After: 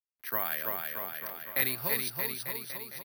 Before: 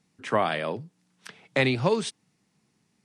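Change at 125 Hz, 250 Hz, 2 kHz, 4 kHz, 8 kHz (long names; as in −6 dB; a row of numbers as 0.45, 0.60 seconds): −15.0, −14.5, −4.0, −5.0, +3.0 decibels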